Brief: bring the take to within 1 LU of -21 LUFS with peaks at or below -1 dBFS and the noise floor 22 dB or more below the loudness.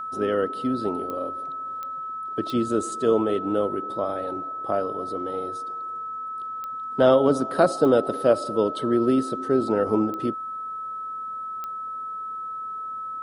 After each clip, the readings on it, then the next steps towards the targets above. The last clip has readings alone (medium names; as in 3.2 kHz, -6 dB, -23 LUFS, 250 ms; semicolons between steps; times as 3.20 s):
clicks found 7; steady tone 1.3 kHz; tone level -30 dBFS; loudness -25.5 LUFS; peak level -4.0 dBFS; loudness target -21.0 LUFS
-> de-click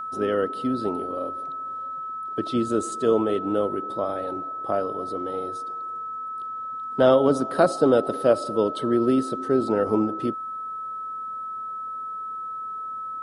clicks found 0; steady tone 1.3 kHz; tone level -30 dBFS
-> band-stop 1.3 kHz, Q 30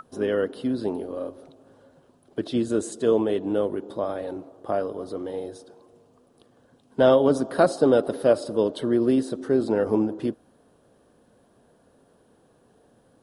steady tone not found; loudness -24.5 LUFS; peak level -5.0 dBFS; loudness target -21.0 LUFS
-> trim +3.5 dB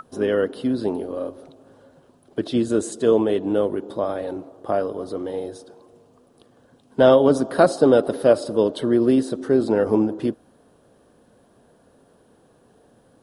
loudness -21.0 LUFS; peak level -1.5 dBFS; noise floor -57 dBFS